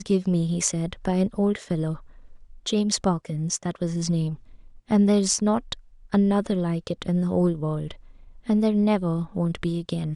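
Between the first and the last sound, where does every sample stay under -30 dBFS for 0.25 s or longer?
1.96–2.66 s
4.34–4.91 s
5.73–6.13 s
7.91–8.49 s

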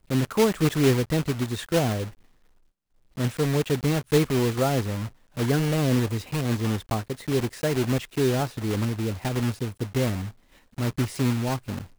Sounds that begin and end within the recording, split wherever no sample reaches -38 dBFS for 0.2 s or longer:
3.17–5.09 s
5.37–10.31 s

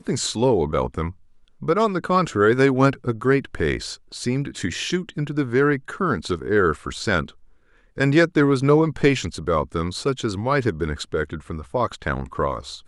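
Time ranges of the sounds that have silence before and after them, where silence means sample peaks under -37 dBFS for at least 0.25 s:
1.62–7.30 s

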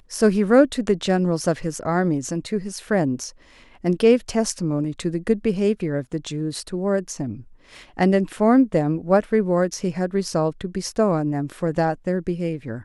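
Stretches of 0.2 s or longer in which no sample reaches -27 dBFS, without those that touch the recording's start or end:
3.28–3.84 s
7.34–7.99 s

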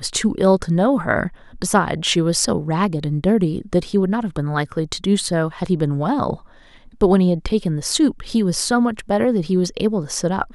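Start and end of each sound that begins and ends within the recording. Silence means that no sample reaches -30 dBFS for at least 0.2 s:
1.55–6.36 s

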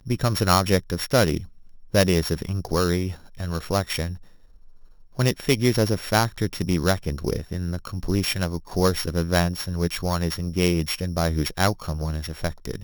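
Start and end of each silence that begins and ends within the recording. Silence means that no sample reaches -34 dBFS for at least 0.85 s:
4.16–5.19 s

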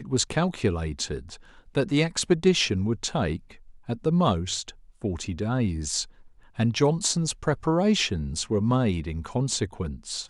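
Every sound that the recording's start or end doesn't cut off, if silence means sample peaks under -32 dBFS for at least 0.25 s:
1.75–3.36 s
3.89–4.70 s
5.04–6.04 s

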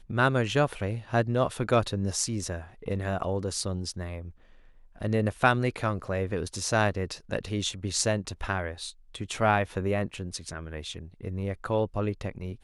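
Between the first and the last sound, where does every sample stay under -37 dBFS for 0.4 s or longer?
4.29–5.01 s

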